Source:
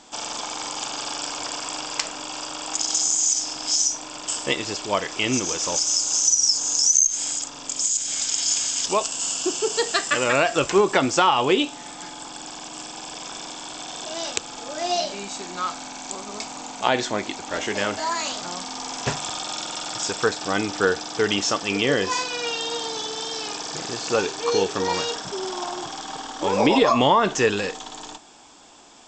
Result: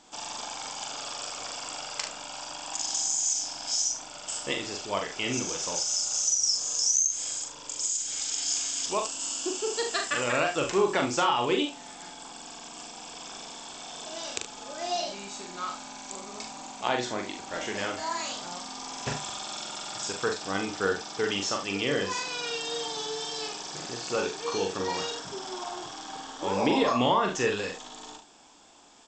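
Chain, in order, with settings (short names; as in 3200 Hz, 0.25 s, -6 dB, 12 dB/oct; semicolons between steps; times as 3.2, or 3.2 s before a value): 22.26–23.48 comb 7 ms, depth 74%; on a send: early reflections 41 ms -4.5 dB, 73 ms -11 dB; on the sum: gain -8 dB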